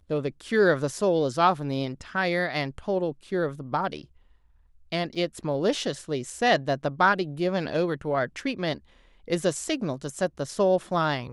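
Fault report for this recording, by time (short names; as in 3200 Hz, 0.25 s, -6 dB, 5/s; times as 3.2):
5.15–5.16 gap 5.7 ms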